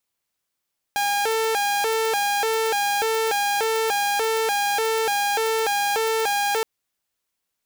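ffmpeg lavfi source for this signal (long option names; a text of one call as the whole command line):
ffmpeg -f lavfi -i "aevalsrc='0.133*(2*mod((629.5*t+183.5/1.7*(0.5-abs(mod(1.7*t,1)-0.5))),1)-1)':duration=5.67:sample_rate=44100" out.wav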